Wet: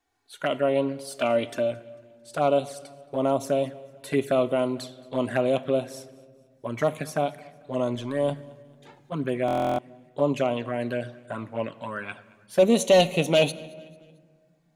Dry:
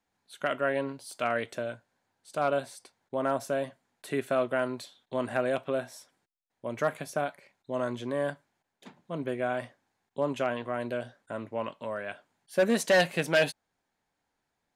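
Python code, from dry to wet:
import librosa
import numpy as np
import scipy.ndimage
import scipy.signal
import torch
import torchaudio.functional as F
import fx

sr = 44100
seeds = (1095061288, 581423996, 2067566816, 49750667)

p1 = fx.comb(x, sr, ms=3.4, depth=0.57, at=(1.04, 1.71))
p2 = fx.transient(p1, sr, attack_db=-6, sustain_db=4, at=(7.95, 9.12))
p3 = fx.env_flanger(p2, sr, rest_ms=2.7, full_db=-26.5)
p4 = p3 + fx.echo_feedback(p3, sr, ms=223, feedback_pct=44, wet_db=-24, dry=0)
p5 = fx.room_shoebox(p4, sr, seeds[0], volume_m3=2300.0, walls='mixed', distance_m=0.3)
p6 = fx.buffer_glitch(p5, sr, at_s=(9.46,), block=1024, repeats=13)
y = p6 * 10.0 ** (7.0 / 20.0)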